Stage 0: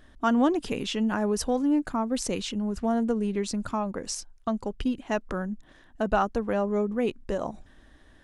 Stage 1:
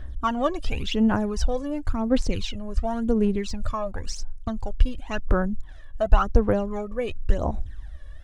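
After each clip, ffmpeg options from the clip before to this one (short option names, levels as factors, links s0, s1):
-filter_complex "[0:a]lowshelf=f=120:t=q:w=1.5:g=12,acrossover=split=6200[s0][s1];[s1]acompressor=threshold=0.00158:ratio=4:attack=1:release=60[s2];[s0][s2]amix=inputs=2:normalize=0,aphaser=in_gain=1:out_gain=1:delay=1.8:decay=0.68:speed=0.93:type=sinusoidal,volume=0.891"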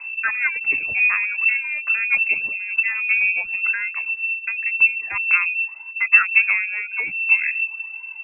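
-filter_complex "[0:a]asplit=2[s0][s1];[s1]asoftclip=type=hard:threshold=0.168,volume=0.398[s2];[s0][s2]amix=inputs=2:normalize=0,lowpass=f=2300:t=q:w=0.5098,lowpass=f=2300:t=q:w=0.6013,lowpass=f=2300:t=q:w=0.9,lowpass=f=2300:t=q:w=2.563,afreqshift=-2700,volume=0.891"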